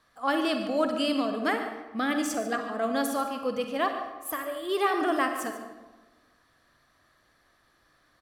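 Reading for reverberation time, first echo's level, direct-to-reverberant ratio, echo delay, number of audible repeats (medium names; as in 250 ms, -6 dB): 1.3 s, -13.5 dB, 5.0 dB, 144 ms, 1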